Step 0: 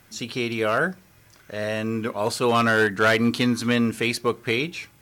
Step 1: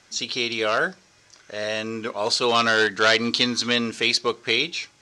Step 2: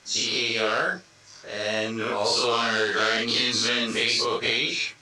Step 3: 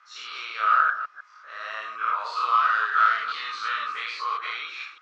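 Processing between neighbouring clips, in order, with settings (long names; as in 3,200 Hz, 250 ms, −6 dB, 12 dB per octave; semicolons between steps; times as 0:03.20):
dynamic equaliser 3,800 Hz, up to +6 dB, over −41 dBFS, Q 1.8; low-pass filter 6,500 Hz 24 dB per octave; bass and treble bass −10 dB, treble +10 dB
every bin's largest magnitude spread in time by 120 ms; multi-voice chorus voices 4, 0.75 Hz, delay 23 ms, depth 4.8 ms; downward compressor, threshold −20 dBFS, peak gain reduction 8.5 dB
delay that plays each chunk backwards 151 ms, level −11 dB; four-pole ladder band-pass 1,300 Hz, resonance 85%; level +7 dB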